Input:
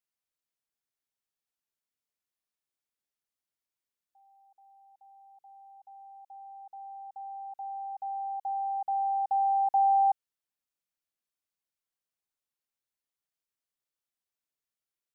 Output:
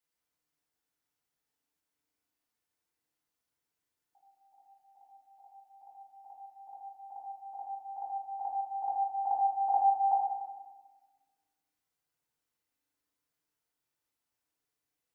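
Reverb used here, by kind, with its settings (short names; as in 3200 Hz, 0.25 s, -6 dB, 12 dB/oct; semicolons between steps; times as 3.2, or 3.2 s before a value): FDN reverb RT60 1.3 s, low-frequency decay 1.3×, high-frequency decay 0.35×, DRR -5 dB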